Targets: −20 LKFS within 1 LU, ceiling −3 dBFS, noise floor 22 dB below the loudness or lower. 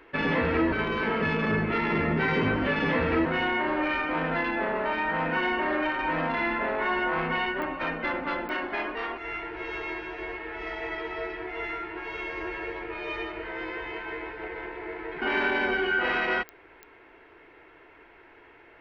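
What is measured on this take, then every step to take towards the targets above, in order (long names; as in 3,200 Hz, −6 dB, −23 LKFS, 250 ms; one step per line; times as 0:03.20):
number of clicks 4; integrated loudness −28.5 LKFS; sample peak −13.5 dBFS; target loudness −20.0 LKFS
→ click removal
level +8.5 dB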